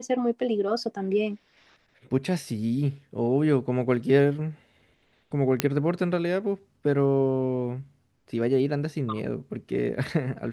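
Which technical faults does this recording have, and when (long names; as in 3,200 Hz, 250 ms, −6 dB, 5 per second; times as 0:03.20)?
0:05.60: click −5 dBFS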